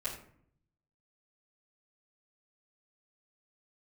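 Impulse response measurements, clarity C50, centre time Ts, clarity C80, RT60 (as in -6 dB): 7.0 dB, 25 ms, 10.0 dB, 0.60 s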